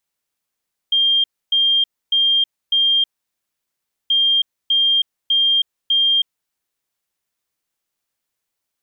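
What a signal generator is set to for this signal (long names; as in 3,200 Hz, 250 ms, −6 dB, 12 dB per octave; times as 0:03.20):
beeps in groups sine 3,200 Hz, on 0.32 s, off 0.28 s, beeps 4, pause 1.06 s, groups 2, −12.5 dBFS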